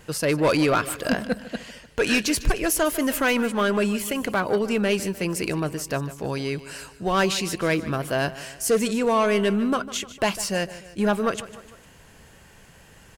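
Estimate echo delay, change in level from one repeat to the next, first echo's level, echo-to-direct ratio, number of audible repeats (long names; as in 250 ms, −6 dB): 151 ms, −5.5 dB, −16.0 dB, −14.5 dB, 3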